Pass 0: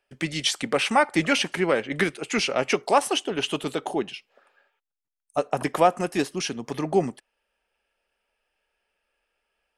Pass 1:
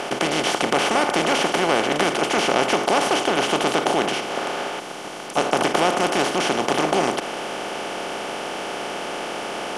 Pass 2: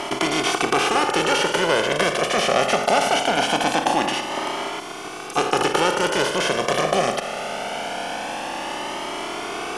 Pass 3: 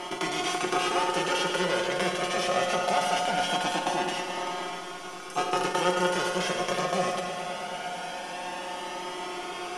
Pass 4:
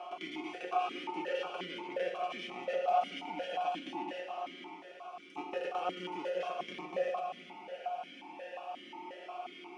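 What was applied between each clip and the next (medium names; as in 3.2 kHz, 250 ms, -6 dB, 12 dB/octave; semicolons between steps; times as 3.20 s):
spectral levelling over time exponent 0.2; trim -7 dB
Shepard-style flanger rising 0.22 Hz; trim +5 dB
feedback comb 180 Hz, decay 0.15 s, harmonics all, mix 90%; multi-head delay 108 ms, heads first and second, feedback 67%, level -13 dB
stepped vowel filter 5.6 Hz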